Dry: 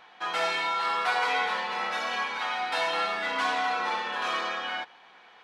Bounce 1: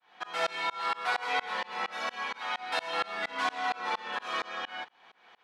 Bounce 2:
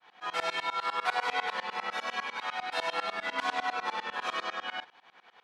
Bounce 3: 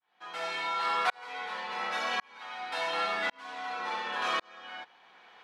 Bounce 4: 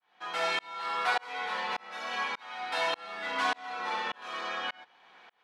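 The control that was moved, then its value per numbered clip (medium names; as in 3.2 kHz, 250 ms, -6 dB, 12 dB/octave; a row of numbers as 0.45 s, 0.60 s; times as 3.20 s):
tremolo, rate: 4.3 Hz, 10 Hz, 0.91 Hz, 1.7 Hz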